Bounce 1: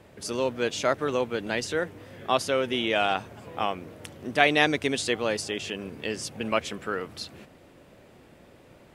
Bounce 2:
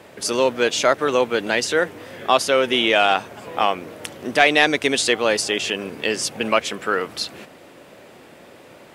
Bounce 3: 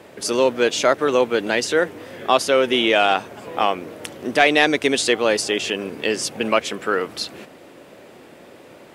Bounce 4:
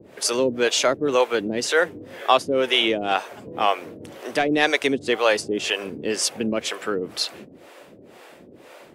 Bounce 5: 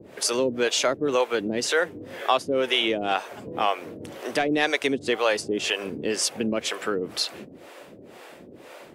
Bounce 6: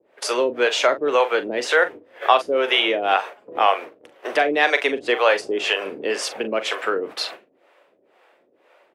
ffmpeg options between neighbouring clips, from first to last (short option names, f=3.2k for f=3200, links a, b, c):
-filter_complex "[0:a]asplit=2[a][b];[b]alimiter=limit=-15dB:level=0:latency=1:release=418,volume=1dB[c];[a][c]amix=inputs=2:normalize=0,highpass=f=370:p=1,asoftclip=type=tanh:threshold=-4.5dB,volume=4.5dB"
-af "equalizer=f=340:t=o:w=1.5:g=3.5,volume=-1dB"
-filter_complex "[0:a]acrossover=split=440[a][b];[a]aeval=exprs='val(0)*(1-1/2+1/2*cos(2*PI*2*n/s))':c=same[c];[b]aeval=exprs='val(0)*(1-1/2-1/2*cos(2*PI*2*n/s))':c=same[d];[c][d]amix=inputs=2:normalize=0,volume=3dB"
-af "acompressor=threshold=-27dB:ratio=1.5,volume=1dB"
-filter_complex "[0:a]agate=range=-17dB:threshold=-35dB:ratio=16:detection=peak,acrossover=split=380 3300:gain=0.0794 1 0.224[a][b][c];[a][b][c]amix=inputs=3:normalize=0,asplit=2[d][e];[e]adelay=41,volume=-11.5dB[f];[d][f]amix=inputs=2:normalize=0,volume=7dB"